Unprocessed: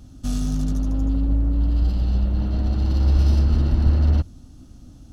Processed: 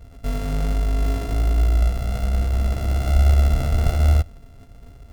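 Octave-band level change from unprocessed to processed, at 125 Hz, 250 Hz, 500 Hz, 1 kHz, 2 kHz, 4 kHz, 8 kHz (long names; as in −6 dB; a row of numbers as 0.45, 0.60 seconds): 0.0 dB, −5.5 dB, +6.5 dB, +8.0 dB, +9.5 dB, +3.5 dB, can't be measured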